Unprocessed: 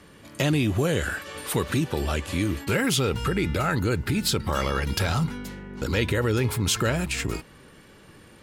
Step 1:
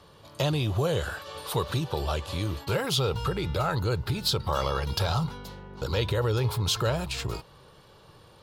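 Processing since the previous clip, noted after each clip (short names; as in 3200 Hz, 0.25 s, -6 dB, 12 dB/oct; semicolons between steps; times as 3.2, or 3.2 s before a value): graphic EQ 125/250/500/1000/2000/4000/8000 Hz +5/-11/+4/+7/-10/+8/-6 dB; gain -3.5 dB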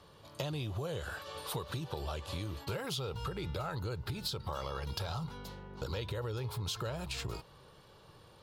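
compressor, threshold -30 dBFS, peak gain reduction 8.5 dB; gain -4.5 dB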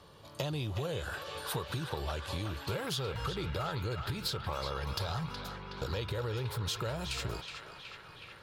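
narrowing echo 0.37 s, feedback 81%, band-pass 2000 Hz, level -5 dB; gain +2 dB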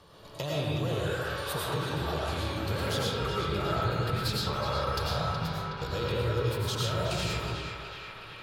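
digital reverb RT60 1.4 s, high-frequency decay 0.45×, pre-delay 65 ms, DRR -5 dB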